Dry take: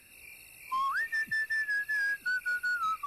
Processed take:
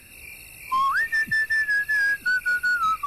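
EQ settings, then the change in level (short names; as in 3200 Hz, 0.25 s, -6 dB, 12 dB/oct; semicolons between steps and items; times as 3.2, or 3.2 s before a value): low shelf 210 Hz +7.5 dB; +8.5 dB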